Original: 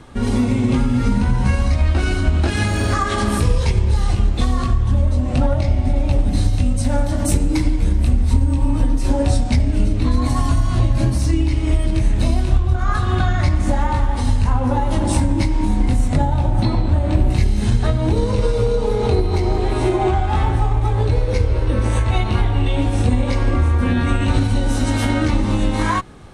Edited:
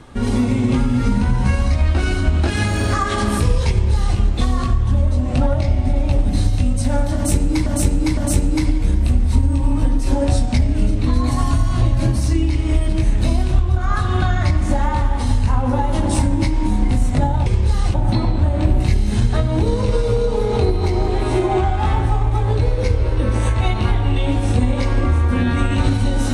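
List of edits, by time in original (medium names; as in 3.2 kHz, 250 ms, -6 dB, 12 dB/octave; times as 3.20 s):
3.70–4.18 s: copy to 16.44 s
7.15–7.66 s: loop, 3 plays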